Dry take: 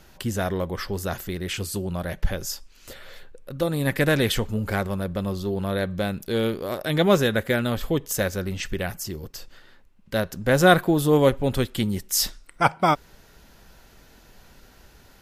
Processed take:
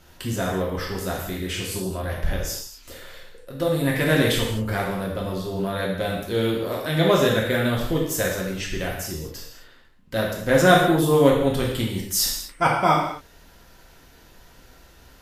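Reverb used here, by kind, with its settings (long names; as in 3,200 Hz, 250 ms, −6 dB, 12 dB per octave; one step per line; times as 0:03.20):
reverb whose tail is shaped and stops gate 280 ms falling, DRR −3 dB
level −3 dB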